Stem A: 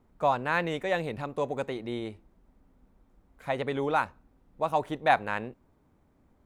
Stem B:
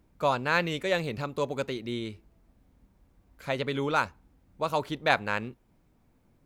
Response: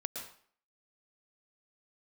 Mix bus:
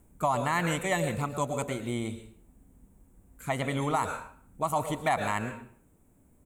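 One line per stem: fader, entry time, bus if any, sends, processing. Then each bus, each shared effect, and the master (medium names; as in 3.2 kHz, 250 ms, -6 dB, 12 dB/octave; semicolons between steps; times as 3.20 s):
+1.0 dB, 0.00 s, no send, level-controlled noise filter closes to 500 Hz
-1.5 dB, 0.7 ms, send -4.5 dB, auto duck -7 dB, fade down 0.25 s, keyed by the first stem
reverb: on, RT60 0.50 s, pre-delay 107 ms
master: resonant high shelf 6.3 kHz +9.5 dB, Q 3; peak limiter -17 dBFS, peak gain reduction 8.5 dB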